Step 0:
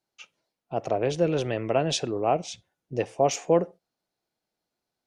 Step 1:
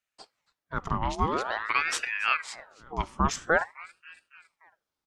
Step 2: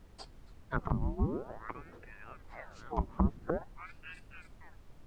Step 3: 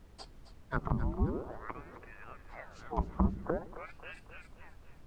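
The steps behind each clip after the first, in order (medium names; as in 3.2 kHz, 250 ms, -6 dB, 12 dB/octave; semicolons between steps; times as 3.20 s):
feedback delay 278 ms, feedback 59%, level -22.5 dB; ring modulator with a swept carrier 1.3 kHz, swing 65%, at 0.48 Hz
low-pass that closes with the level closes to 310 Hz, closed at -26 dBFS; added noise brown -52 dBFS
two-band feedback delay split 440 Hz, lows 81 ms, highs 266 ms, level -13 dB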